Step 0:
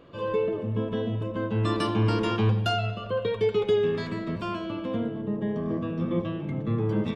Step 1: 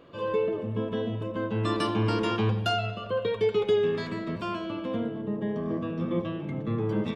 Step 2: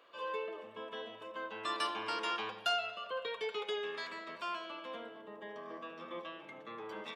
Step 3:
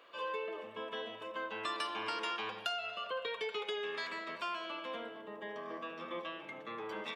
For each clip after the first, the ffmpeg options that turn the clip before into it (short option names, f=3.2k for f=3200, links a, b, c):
-af "lowshelf=f=130:g=-6.5"
-af "highpass=850,volume=-3dB"
-af "equalizer=f=2.3k:w=1.5:g=2.5,acompressor=threshold=-37dB:ratio=5,volume=2.5dB"